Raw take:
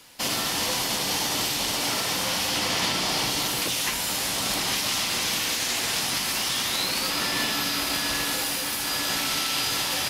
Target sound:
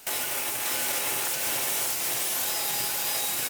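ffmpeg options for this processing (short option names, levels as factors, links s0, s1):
-af "asetrate=127449,aresample=44100,alimiter=limit=0.075:level=0:latency=1:release=326,aecho=1:1:587:0.668,volume=1.5"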